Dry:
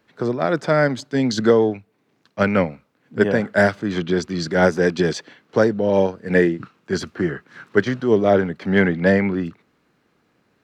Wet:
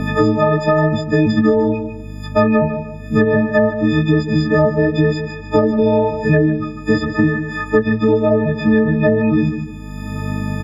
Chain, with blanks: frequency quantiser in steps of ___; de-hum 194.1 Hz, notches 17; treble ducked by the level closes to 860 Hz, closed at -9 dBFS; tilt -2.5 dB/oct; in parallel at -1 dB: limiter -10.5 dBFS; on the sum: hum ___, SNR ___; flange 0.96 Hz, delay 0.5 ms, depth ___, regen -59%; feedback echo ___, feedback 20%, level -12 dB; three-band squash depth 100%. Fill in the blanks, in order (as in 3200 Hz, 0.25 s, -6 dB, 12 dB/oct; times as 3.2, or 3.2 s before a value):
6 st, 50 Hz, 26 dB, 4.5 ms, 0.149 s